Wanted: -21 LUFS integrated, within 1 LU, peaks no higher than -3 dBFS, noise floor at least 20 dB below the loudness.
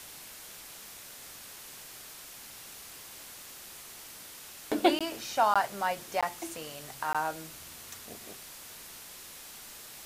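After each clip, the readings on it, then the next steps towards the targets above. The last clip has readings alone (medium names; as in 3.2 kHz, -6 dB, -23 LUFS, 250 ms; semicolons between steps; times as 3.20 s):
dropouts 4; longest dropout 16 ms; noise floor -48 dBFS; noise floor target -56 dBFS; loudness -35.5 LUFS; peak level -11.0 dBFS; loudness target -21.0 LUFS
-> interpolate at 4.99/5.54/6.21/7.13 s, 16 ms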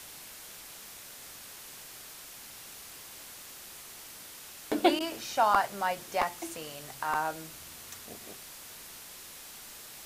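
dropouts 0; noise floor -48 dBFS; noise floor target -55 dBFS
-> noise print and reduce 7 dB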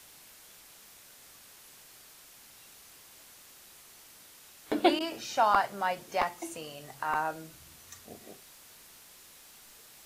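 noise floor -55 dBFS; loudness -30.5 LUFS; peak level -11.0 dBFS; loudness target -21.0 LUFS
-> trim +9.5 dB; peak limiter -3 dBFS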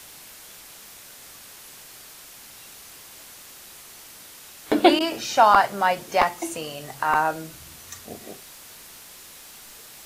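loudness -21.5 LUFS; peak level -3.0 dBFS; noise floor -45 dBFS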